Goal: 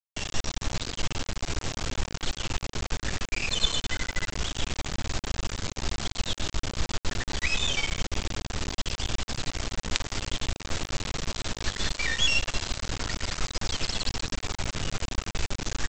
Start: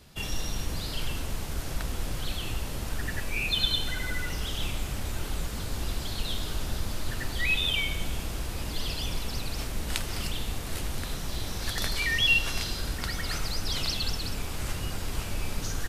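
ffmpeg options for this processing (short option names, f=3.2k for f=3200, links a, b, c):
-af "adynamicequalizer=threshold=0.00562:dfrequency=5500:dqfactor=2:tfrequency=5500:tqfactor=2:attack=5:release=100:ratio=0.375:range=1.5:mode=cutabove:tftype=bell,aresample=16000,acrusher=bits=3:dc=4:mix=0:aa=0.000001,aresample=44100,volume=3.5dB"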